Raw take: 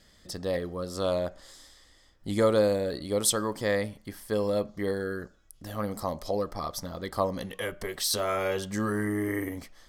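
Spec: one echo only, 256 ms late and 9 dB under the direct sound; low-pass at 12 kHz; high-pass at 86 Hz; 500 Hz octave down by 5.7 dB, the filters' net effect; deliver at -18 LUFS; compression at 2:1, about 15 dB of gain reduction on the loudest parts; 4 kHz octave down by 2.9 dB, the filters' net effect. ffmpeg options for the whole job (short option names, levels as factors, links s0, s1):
-af "highpass=86,lowpass=12000,equalizer=f=500:t=o:g=-6.5,equalizer=f=4000:t=o:g=-3.5,acompressor=threshold=0.00282:ratio=2,aecho=1:1:256:0.355,volume=22.4"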